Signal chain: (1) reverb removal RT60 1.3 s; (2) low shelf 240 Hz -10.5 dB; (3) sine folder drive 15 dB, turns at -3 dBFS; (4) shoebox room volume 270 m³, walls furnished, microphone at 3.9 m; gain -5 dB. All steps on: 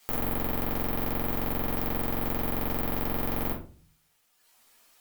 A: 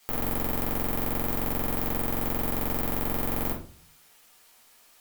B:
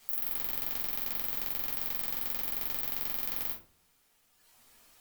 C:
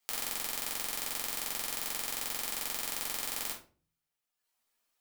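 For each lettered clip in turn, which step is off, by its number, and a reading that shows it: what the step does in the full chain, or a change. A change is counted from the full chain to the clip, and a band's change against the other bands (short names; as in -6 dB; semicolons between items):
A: 1, 8 kHz band +5.5 dB; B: 2, 8 kHz band +15.0 dB; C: 3, crest factor change +9.0 dB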